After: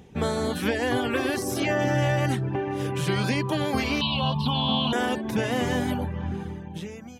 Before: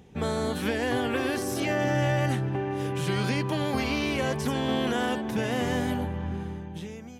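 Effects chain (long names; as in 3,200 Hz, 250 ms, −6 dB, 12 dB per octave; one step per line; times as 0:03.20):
0:04.01–0:04.93: drawn EQ curve 120 Hz 0 dB, 180 Hz +10 dB, 360 Hz −17 dB, 1,000 Hz +8 dB, 1,900 Hz −28 dB, 2,800 Hz +8 dB, 4,100 Hz +9 dB, 6,500 Hz −26 dB, 11,000 Hz −16 dB
reverb reduction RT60 0.59 s
level +3.5 dB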